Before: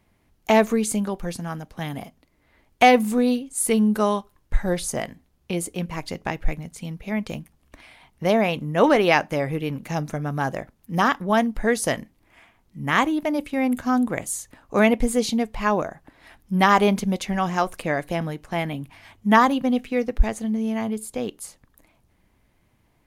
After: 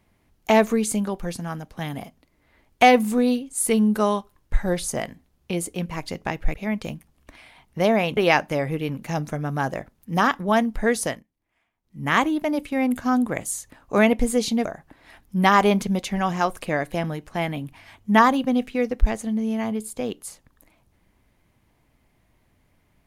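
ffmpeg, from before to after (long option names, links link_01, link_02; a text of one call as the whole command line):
ffmpeg -i in.wav -filter_complex "[0:a]asplit=6[link_01][link_02][link_03][link_04][link_05][link_06];[link_01]atrim=end=6.542[link_07];[link_02]atrim=start=6.988:end=8.622[link_08];[link_03]atrim=start=8.978:end=12.04,asetpts=PTS-STARTPTS,afade=type=out:start_time=2.832:duration=0.23:silence=0.112202[link_09];[link_04]atrim=start=12.04:end=12.63,asetpts=PTS-STARTPTS,volume=-19dB[link_10];[link_05]atrim=start=12.63:end=15.462,asetpts=PTS-STARTPTS,afade=type=in:duration=0.23:silence=0.112202[link_11];[link_06]atrim=start=15.818[link_12];[link_07][link_08]acrossfade=duration=0.004:curve1=hsin:curve2=hsin[link_13];[link_09][link_10][link_11]concat=n=3:v=0:a=1[link_14];[link_13][link_14]acrossfade=duration=0.004:curve1=hsin:curve2=hsin[link_15];[link_15][link_12]acrossfade=duration=0.004:curve1=hsin:curve2=hsin" out.wav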